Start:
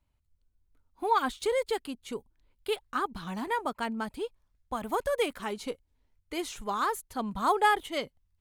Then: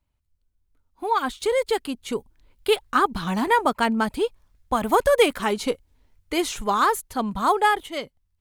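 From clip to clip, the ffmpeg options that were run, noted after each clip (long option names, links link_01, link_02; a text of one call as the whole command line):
ffmpeg -i in.wav -af "dynaudnorm=framelen=300:gausssize=11:maxgain=11.5dB" out.wav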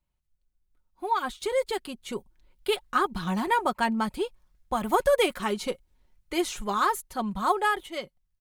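ffmpeg -i in.wav -af "aecho=1:1:5.5:0.48,volume=-5.5dB" out.wav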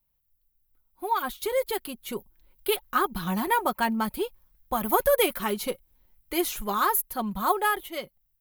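ffmpeg -i in.wav -af "aexciter=amount=9:drive=4.5:freq=11000" out.wav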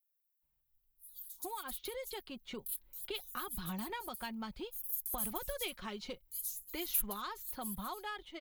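ffmpeg -i in.wav -filter_complex "[0:a]acrossover=split=5900[link_01][link_02];[link_01]adelay=420[link_03];[link_03][link_02]amix=inputs=2:normalize=0,acrossover=split=130|3000[link_04][link_05][link_06];[link_05]acompressor=threshold=-36dB:ratio=6[link_07];[link_04][link_07][link_06]amix=inputs=3:normalize=0,volume=-6dB" out.wav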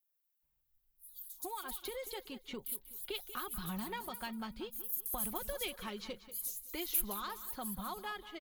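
ffmpeg -i in.wav -af "aecho=1:1:188|376|564:0.2|0.0698|0.0244" out.wav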